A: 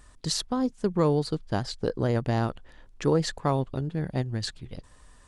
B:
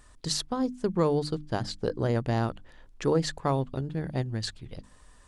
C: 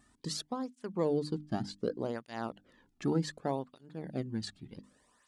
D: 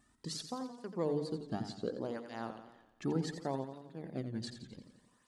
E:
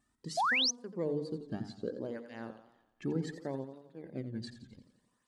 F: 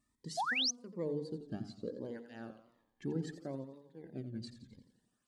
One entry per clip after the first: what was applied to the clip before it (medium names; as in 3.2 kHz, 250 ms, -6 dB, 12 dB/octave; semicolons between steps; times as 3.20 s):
hum notches 50/100/150/200/250/300 Hz; trim -1 dB
peaking EQ 220 Hz +7.5 dB 1 oct; cancelling through-zero flanger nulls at 0.66 Hz, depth 2.1 ms; trim -5.5 dB
modulated delay 87 ms, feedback 55%, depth 89 cents, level -9 dB; trim -4 dB
painted sound rise, 0.37–0.71 s, 630–6500 Hz -29 dBFS; spectral noise reduction 7 dB
Shepard-style phaser falling 1.1 Hz; trim -2.5 dB